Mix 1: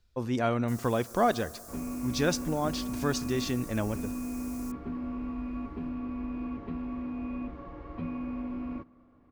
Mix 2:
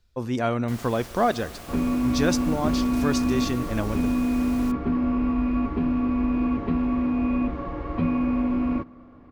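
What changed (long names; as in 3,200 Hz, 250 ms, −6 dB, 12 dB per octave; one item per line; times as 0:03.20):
speech +3.0 dB
first sound: remove inverse Chebyshev high-pass filter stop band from 1,800 Hz, stop band 60 dB
second sound +12.0 dB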